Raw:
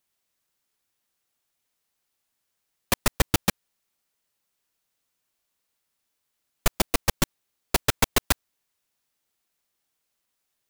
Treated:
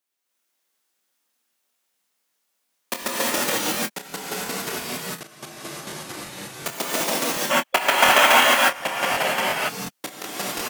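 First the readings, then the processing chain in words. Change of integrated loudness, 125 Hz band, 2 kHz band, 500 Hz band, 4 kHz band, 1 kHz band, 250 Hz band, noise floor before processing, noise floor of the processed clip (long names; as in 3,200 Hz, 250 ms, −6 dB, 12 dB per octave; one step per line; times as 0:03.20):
+5.5 dB, −6.5 dB, +12.5 dB, +9.5 dB, +9.0 dB, +12.5 dB, +2.5 dB, −79 dBFS, −74 dBFS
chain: high-pass filter 220 Hz 24 dB per octave
double-tracking delay 24 ms −9 dB
reverb whose tail is shaped and stops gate 380 ms rising, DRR −7 dB
delay with pitch and tempo change per echo 284 ms, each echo −4 semitones, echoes 2, each echo −6 dB
gain on a spectral selection 0:07.51–0:09.69, 530–3,400 Hz +11 dB
regular buffer underruns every 0.36 s, samples 1,024, repeat, from 0:00.84
level −4.5 dB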